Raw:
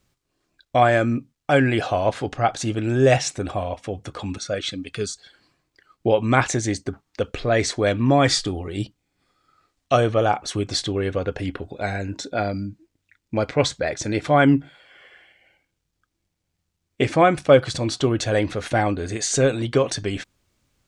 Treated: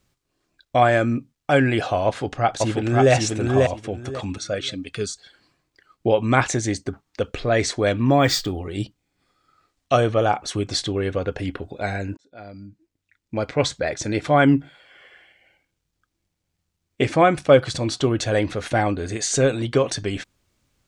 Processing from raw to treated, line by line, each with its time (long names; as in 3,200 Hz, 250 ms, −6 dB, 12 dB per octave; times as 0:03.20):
0:02.06–0:03.12: delay throw 540 ms, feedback 20%, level −2 dB
0:08.11–0:08.59: linearly interpolated sample-rate reduction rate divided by 2×
0:12.17–0:13.79: fade in